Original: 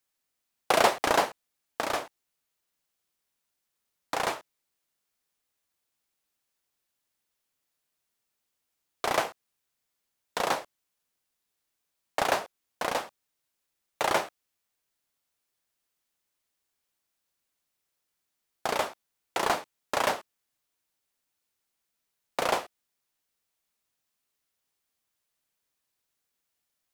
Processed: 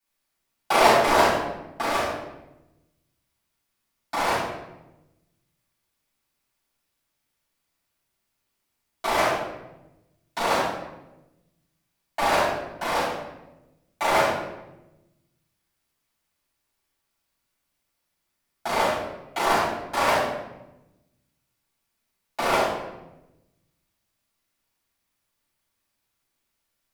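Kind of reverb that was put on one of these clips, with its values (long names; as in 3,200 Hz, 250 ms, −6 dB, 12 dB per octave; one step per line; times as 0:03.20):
rectangular room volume 390 cubic metres, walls mixed, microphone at 7.8 metres
level −10 dB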